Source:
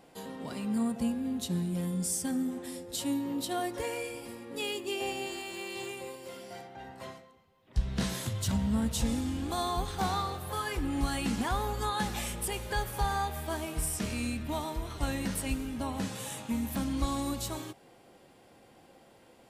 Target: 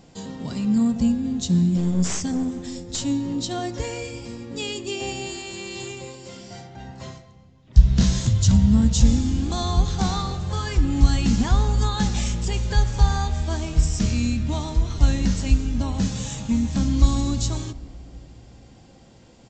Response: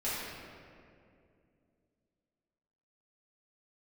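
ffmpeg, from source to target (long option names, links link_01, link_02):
-filter_complex "[0:a]bass=frequency=250:gain=14,treble=frequency=4000:gain=12,asettb=1/sr,asplit=3[link_01][link_02][link_03];[link_01]atrim=end=1.774[link_04];[link_02]atrim=start=1.77:end=3.06,asetpts=PTS-STARTPTS,afade=type=in:duration=0.004:curve=qsin,afade=type=out:start_time=1.286:duration=0.004:curve=qsin,aeval=exprs='clip(val(0),-1,0.0596)':channel_layout=same[link_05];[link_03]atrim=start=3.056[link_06];[link_04][link_05]acrossfade=duration=0.004:curve1=hsin:curve2=qsin[link_07];[link_07][link_06]acrossfade=duration=0.004:curve1=qsin:curve2=hsin,asplit=2[link_08][link_09];[1:a]atrim=start_sample=2205,lowshelf=frequency=130:gain=11.5[link_10];[link_09][link_10]afir=irnorm=-1:irlink=0,volume=-23.5dB[link_11];[link_08][link_11]amix=inputs=2:normalize=0,aresample=16000,aresample=44100,volume=1.5dB"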